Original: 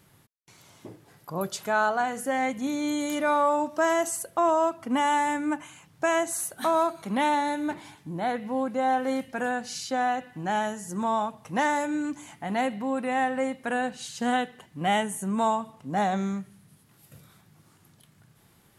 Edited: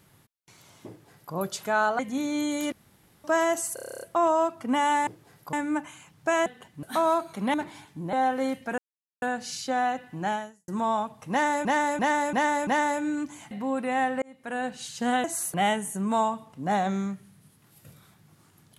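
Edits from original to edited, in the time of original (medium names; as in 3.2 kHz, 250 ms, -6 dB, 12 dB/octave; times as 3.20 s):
0.88–1.34 s: copy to 5.29 s
1.99–2.48 s: delete
3.21–3.73 s: room tone
4.23 s: stutter 0.03 s, 10 plays
6.22–6.52 s: swap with 14.44–14.81 s
7.23–7.64 s: delete
8.23–8.80 s: delete
9.45 s: insert silence 0.44 s
10.51–10.91 s: fade out quadratic
11.54–11.88 s: loop, 5 plays
12.38–12.71 s: delete
13.42–13.94 s: fade in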